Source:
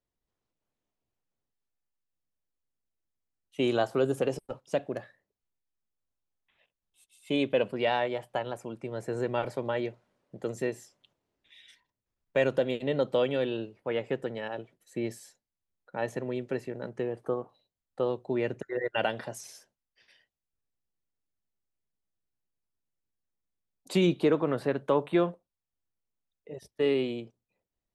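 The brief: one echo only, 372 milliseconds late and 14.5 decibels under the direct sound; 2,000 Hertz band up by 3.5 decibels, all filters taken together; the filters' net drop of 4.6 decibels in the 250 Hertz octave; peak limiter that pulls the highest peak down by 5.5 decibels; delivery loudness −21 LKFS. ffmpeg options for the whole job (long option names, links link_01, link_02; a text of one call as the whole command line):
ffmpeg -i in.wav -af "equalizer=frequency=250:width_type=o:gain=-7,equalizer=frequency=2000:width_type=o:gain=4.5,alimiter=limit=-19.5dB:level=0:latency=1,aecho=1:1:372:0.188,volume=12.5dB" out.wav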